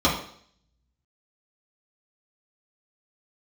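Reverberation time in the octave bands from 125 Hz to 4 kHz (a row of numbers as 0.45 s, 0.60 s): 0.70 s, 0.60 s, 0.60 s, 0.60 s, 0.55 s, 0.65 s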